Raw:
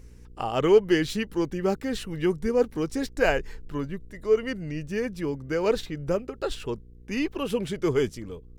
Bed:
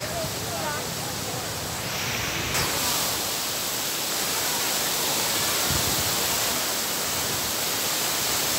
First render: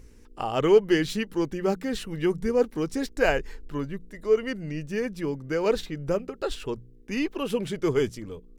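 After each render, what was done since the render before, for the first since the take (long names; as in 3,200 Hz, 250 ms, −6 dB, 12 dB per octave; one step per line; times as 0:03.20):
hum removal 60 Hz, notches 3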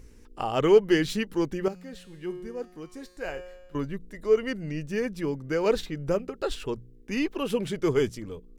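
0:01.68–0:03.75: tuned comb filter 180 Hz, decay 1.2 s, mix 80%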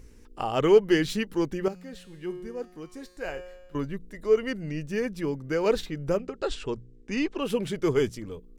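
0:06.18–0:07.43: Butterworth low-pass 8,800 Hz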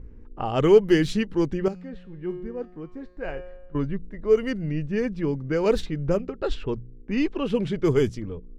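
low-pass that shuts in the quiet parts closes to 1,300 Hz, open at −19.5 dBFS
low-shelf EQ 270 Hz +8.5 dB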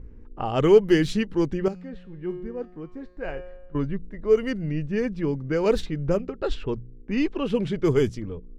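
no processing that can be heard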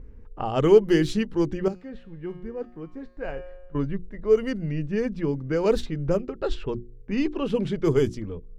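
mains-hum notches 60/120/180/240/300/360 Hz
dynamic equaliser 2,200 Hz, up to −3 dB, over −42 dBFS, Q 1.3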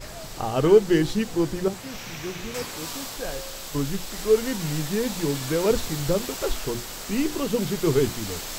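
mix in bed −10 dB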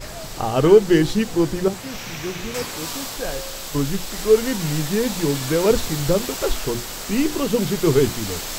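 level +4.5 dB
brickwall limiter −2 dBFS, peak gain reduction 1.5 dB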